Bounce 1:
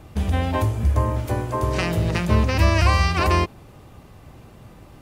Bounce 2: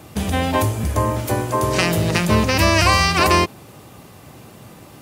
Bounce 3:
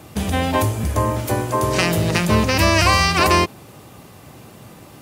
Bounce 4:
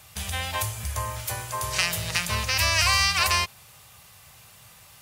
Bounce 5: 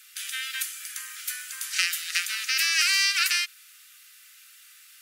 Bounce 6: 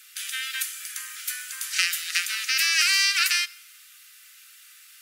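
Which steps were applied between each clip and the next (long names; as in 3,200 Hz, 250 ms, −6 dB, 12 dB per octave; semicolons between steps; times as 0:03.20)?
high-pass filter 120 Hz 12 dB per octave; high-shelf EQ 4,600 Hz +9 dB; level +5 dB
asymmetric clip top −8.5 dBFS
guitar amp tone stack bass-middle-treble 10-0-10
Butterworth high-pass 1,300 Hz 96 dB per octave
dense smooth reverb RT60 0.91 s, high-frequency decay 1×, DRR 19 dB; level +1.5 dB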